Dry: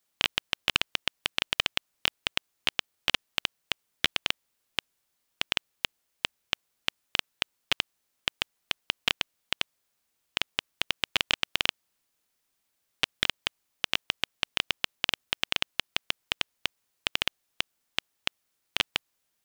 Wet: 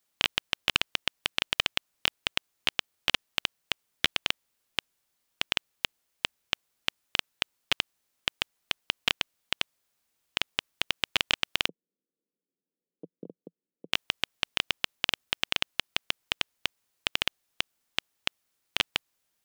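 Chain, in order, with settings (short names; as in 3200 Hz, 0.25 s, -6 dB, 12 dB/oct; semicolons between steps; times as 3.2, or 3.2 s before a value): 11.68–13.93 elliptic band-pass 170–490 Hz, stop band 60 dB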